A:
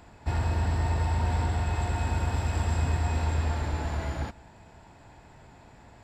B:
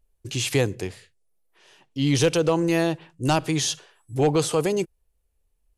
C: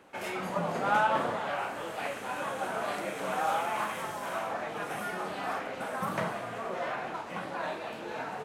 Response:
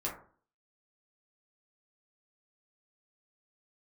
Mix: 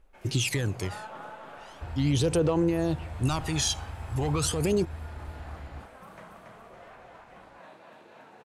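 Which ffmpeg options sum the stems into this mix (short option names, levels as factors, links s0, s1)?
-filter_complex "[0:a]lowpass=5400,lowshelf=f=71:g=8.5,adelay=1550,volume=0.2[s0];[1:a]alimiter=limit=0.133:level=0:latency=1:release=35,aphaser=in_gain=1:out_gain=1:delay=1.3:decay=0.65:speed=0.39:type=sinusoidal,volume=0.794[s1];[2:a]volume=0.15,asplit=2[s2][s3];[s3]volume=0.708,aecho=0:1:281|562|843|1124|1405|1686:1|0.44|0.194|0.0852|0.0375|0.0165[s4];[s0][s1][s2][s4]amix=inputs=4:normalize=0,alimiter=limit=0.158:level=0:latency=1:release=476"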